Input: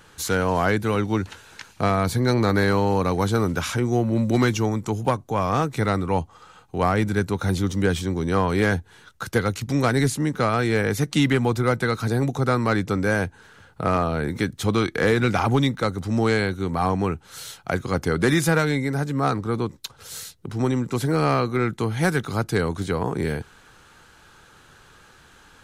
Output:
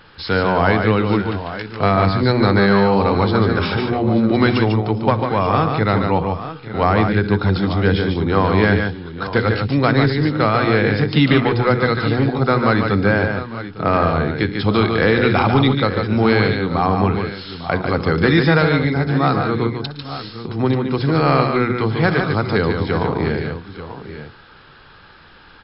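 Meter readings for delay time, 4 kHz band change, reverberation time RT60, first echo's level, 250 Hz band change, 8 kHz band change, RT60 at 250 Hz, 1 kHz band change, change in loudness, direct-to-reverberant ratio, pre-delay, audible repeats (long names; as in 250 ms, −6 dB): 62 ms, +6.5 dB, no reverb audible, −18.0 dB, +6.0 dB, below −40 dB, no reverb audible, +6.5 dB, +5.5 dB, no reverb audible, no reverb audible, 5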